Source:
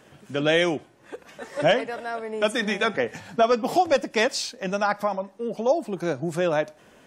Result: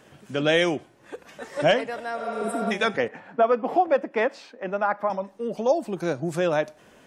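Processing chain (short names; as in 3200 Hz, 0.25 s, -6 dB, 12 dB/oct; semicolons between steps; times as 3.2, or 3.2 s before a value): 2.21–2.69 spectral repair 440–7400 Hz before; 3.08–5.1 three-band isolator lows -23 dB, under 200 Hz, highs -24 dB, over 2300 Hz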